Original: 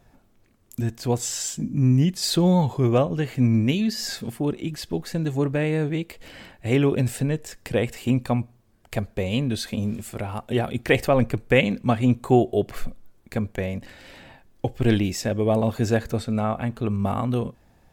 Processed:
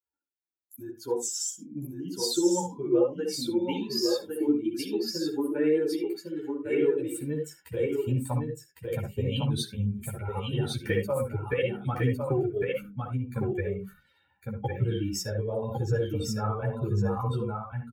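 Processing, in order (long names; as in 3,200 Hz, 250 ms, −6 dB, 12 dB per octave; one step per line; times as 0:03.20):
spectral dynamics exaggerated over time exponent 2
comb filter 2.2 ms, depth 73%
downward compressor 6 to 1, threshold −34 dBFS, peak gain reduction 19.5 dB
high-pass filter sweep 320 Hz → 130 Hz, 0:07.00–0:07.81
single-tap delay 1,106 ms −4 dB
on a send at −4 dB: convolution reverb RT60 0.15 s, pre-delay 59 ms
on the sum: string-ensemble chorus
level +8 dB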